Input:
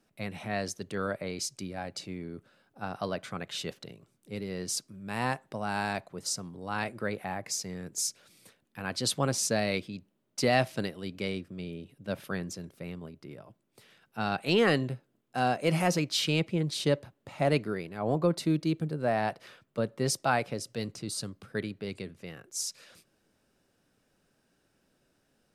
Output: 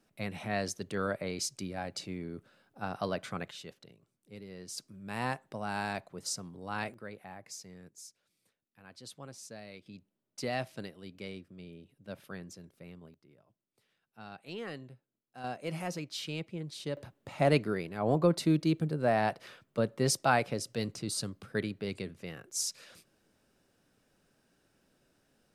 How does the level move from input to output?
−0.5 dB
from 0:03.51 −10.5 dB
from 0:04.78 −3.5 dB
from 0:06.94 −12 dB
from 0:07.89 −19 dB
from 0:09.86 −9.5 dB
from 0:13.14 −17 dB
from 0:15.44 −10.5 dB
from 0:16.97 +0.5 dB

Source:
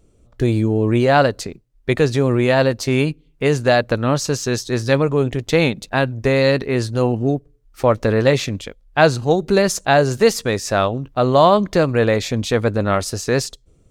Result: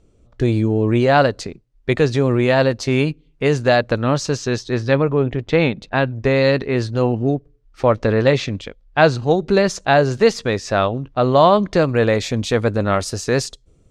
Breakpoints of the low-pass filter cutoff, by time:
0:04.17 6,700 Hz
0:05.21 2,600 Hz
0:06.47 5,100 Hz
0:11.49 5,100 Hz
0:12.23 9,400 Hz

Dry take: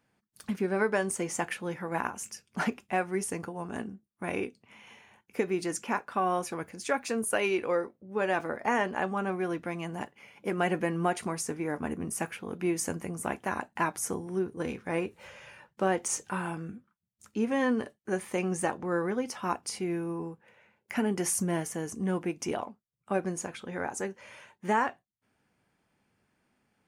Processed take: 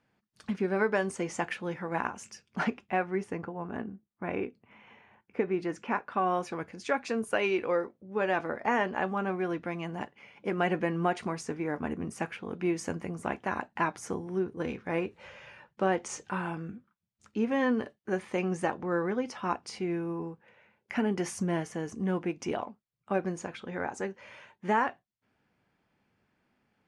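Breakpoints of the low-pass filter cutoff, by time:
0:02.45 5,200 Hz
0:03.49 2,100 Hz
0:05.46 2,100 Hz
0:06.47 4,700 Hz

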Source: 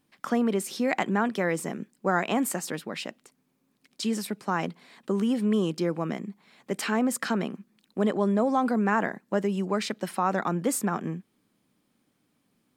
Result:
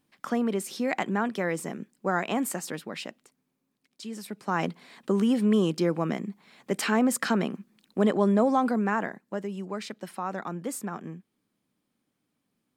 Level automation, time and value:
0:03.04 −2 dB
0:04.08 −10.5 dB
0:04.63 +2 dB
0:08.44 +2 dB
0:09.41 −7 dB

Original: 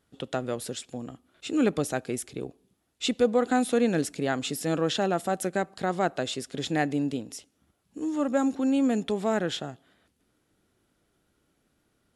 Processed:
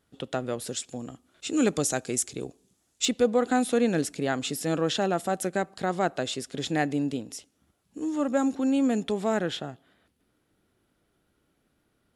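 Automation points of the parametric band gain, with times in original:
parametric band 7,000 Hz 1.1 octaves
0 dB
from 0:00.67 +7 dB
from 0:01.57 +13 dB
from 0:03.05 +1.5 dB
from 0:09.48 −4.5 dB

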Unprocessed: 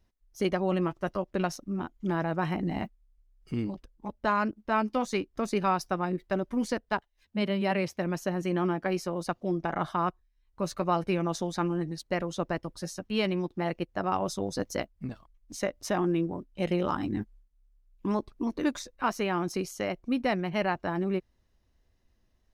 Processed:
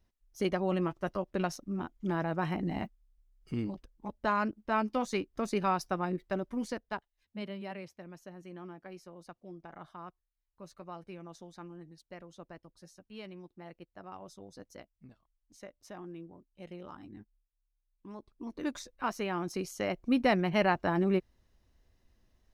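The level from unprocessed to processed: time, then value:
0:06.12 −3 dB
0:07.41 −11 dB
0:08.08 −18 dB
0:18.12 −18 dB
0:18.76 −5 dB
0:19.49 −5 dB
0:20.17 +1.5 dB

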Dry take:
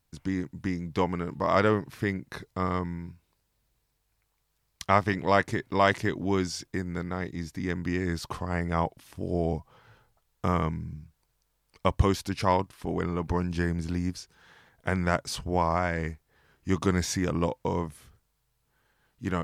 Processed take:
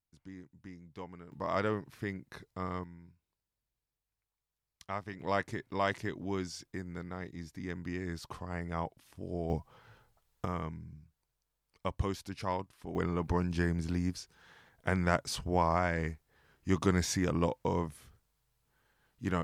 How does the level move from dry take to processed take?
−18.5 dB
from 0:01.32 −9 dB
from 0:02.84 −16 dB
from 0:05.20 −9 dB
from 0:09.50 −2 dB
from 0:10.45 −10.5 dB
from 0:12.95 −3 dB

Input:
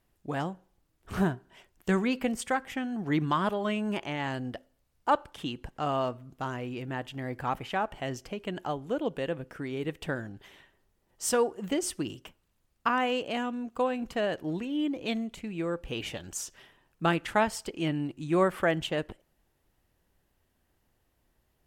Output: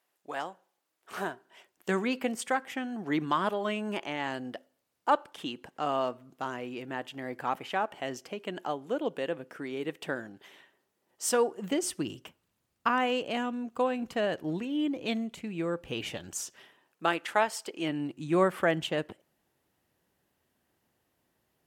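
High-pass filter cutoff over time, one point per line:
0:01.15 550 Hz
0:01.99 240 Hz
0:11.28 240 Hz
0:11.91 100 Hz
0:16.25 100 Hz
0:17.08 390 Hz
0:17.65 390 Hz
0:18.21 130 Hz

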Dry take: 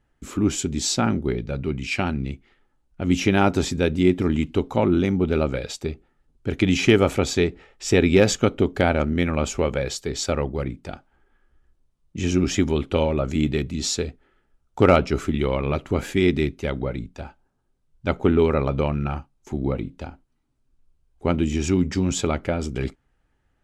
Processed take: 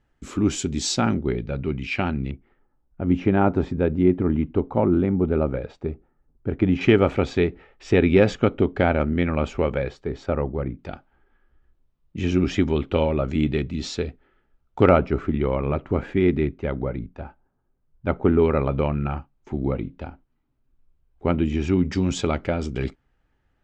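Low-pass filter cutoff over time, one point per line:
7,300 Hz
from 0:01.14 3,300 Hz
from 0:02.31 1,300 Hz
from 0:06.81 2,600 Hz
from 0:09.89 1,500 Hz
from 0:10.79 3,400 Hz
from 0:14.89 1,800 Hz
from 0:18.43 2,800 Hz
from 0:21.85 5,300 Hz

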